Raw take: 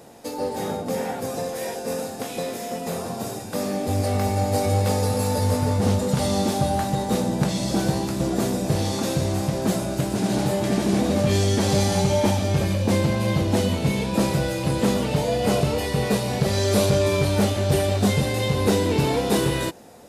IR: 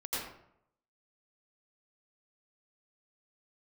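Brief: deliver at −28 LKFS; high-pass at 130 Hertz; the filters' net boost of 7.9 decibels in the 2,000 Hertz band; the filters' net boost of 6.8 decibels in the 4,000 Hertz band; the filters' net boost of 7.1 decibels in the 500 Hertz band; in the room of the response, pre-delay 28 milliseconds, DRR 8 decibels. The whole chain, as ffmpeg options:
-filter_complex "[0:a]highpass=130,equalizer=frequency=500:width_type=o:gain=8,equalizer=frequency=2000:width_type=o:gain=7.5,equalizer=frequency=4000:width_type=o:gain=6,asplit=2[link_01][link_02];[1:a]atrim=start_sample=2205,adelay=28[link_03];[link_02][link_03]afir=irnorm=-1:irlink=0,volume=-12dB[link_04];[link_01][link_04]amix=inputs=2:normalize=0,volume=-9.5dB"

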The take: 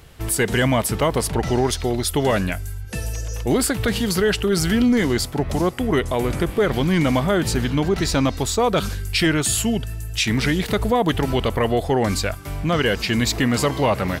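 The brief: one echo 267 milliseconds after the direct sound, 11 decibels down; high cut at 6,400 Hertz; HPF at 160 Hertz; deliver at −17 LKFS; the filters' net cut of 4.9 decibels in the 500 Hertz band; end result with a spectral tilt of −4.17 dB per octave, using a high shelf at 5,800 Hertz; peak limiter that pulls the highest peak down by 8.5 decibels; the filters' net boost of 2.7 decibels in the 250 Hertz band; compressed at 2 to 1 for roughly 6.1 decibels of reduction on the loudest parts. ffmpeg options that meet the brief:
ffmpeg -i in.wav -af "highpass=160,lowpass=6400,equalizer=frequency=250:width_type=o:gain=6.5,equalizer=frequency=500:width_type=o:gain=-9,highshelf=frequency=5800:gain=7.5,acompressor=threshold=-21dB:ratio=2,alimiter=limit=-17dB:level=0:latency=1,aecho=1:1:267:0.282,volume=9.5dB" out.wav

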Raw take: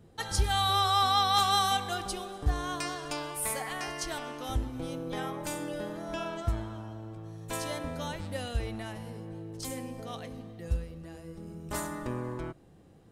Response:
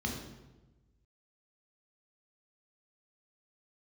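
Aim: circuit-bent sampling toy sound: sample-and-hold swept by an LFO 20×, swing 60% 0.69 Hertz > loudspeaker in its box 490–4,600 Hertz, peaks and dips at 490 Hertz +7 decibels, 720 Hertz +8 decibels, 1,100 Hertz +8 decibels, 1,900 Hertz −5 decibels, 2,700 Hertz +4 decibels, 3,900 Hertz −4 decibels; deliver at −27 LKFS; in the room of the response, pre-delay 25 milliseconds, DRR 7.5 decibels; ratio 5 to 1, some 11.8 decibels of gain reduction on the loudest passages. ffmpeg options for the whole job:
-filter_complex "[0:a]acompressor=threshold=-36dB:ratio=5,asplit=2[link_01][link_02];[1:a]atrim=start_sample=2205,adelay=25[link_03];[link_02][link_03]afir=irnorm=-1:irlink=0,volume=-12dB[link_04];[link_01][link_04]amix=inputs=2:normalize=0,acrusher=samples=20:mix=1:aa=0.000001:lfo=1:lforange=12:lforate=0.69,highpass=490,equalizer=frequency=490:width_type=q:width=4:gain=7,equalizer=frequency=720:width_type=q:width=4:gain=8,equalizer=frequency=1100:width_type=q:width=4:gain=8,equalizer=frequency=1900:width_type=q:width=4:gain=-5,equalizer=frequency=2700:width_type=q:width=4:gain=4,equalizer=frequency=3900:width_type=q:width=4:gain=-4,lowpass=frequency=4600:width=0.5412,lowpass=frequency=4600:width=1.3066,volume=10.5dB"

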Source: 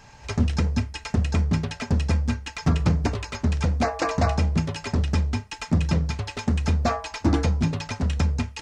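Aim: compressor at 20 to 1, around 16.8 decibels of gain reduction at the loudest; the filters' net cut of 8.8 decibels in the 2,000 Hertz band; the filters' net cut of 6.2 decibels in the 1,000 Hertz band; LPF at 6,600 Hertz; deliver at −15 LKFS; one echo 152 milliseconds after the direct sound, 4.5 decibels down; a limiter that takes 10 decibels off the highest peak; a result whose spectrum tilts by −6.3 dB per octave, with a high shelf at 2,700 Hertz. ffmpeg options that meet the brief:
ffmpeg -i in.wav -af "lowpass=6600,equalizer=frequency=1000:width_type=o:gain=-6.5,equalizer=frequency=2000:width_type=o:gain=-6.5,highshelf=frequency=2700:gain=-6.5,acompressor=threshold=-33dB:ratio=20,alimiter=level_in=7.5dB:limit=-24dB:level=0:latency=1,volume=-7.5dB,aecho=1:1:152:0.596,volume=25dB" out.wav

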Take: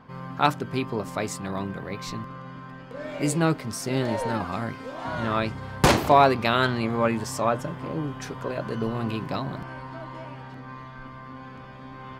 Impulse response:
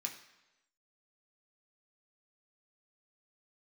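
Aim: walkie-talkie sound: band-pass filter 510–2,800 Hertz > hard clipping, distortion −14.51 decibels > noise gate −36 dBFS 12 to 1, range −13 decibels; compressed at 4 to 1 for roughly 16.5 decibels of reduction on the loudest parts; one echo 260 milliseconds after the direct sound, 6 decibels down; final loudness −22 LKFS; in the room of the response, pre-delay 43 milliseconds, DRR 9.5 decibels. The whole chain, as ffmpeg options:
-filter_complex "[0:a]acompressor=threshold=-32dB:ratio=4,aecho=1:1:260:0.501,asplit=2[link_01][link_02];[1:a]atrim=start_sample=2205,adelay=43[link_03];[link_02][link_03]afir=irnorm=-1:irlink=0,volume=-8.5dB[link_04];[link_01][link_04]amix=inputs=2:normalize=0,highpass=510,lowpass=2800,asoftclip=type=hard:threshold=-29.5dB,agate=range=-13dB:threshold=-36dB:ratio=12,volume=18dB"

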